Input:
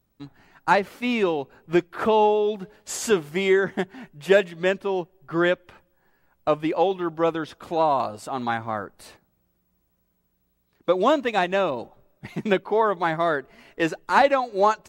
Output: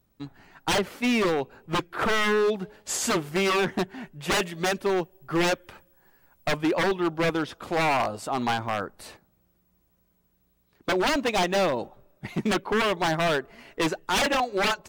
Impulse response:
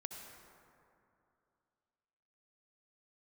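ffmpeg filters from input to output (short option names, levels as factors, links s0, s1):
-filter_complex "[0:a]asettb=1/sr,asplit=3[s0][s1][s2];[s0]atrim=end=4.324[s3];[s1]atrim=start=4.32:end=6.57,asetpts=PTS-STARTPTS,afade=t=in:d=0.004:c=qsin,afade=t=out:st=2.246:d=0.004:c=qsin,highshelf=f=6700:g=9.5[s4];[s2]atrim=start=6.566[s5];[s3][s4]acrossfade=d=0.004:c1=hsin:c2=qsin[s6];[s6][s5]acrossfade=d=0.004:c1=qsin:c2=hsin,aeval=exprs='0.1*(abs(mod(val(0)/0.1+3,4)-2)-1)':c=same,volume=1.26"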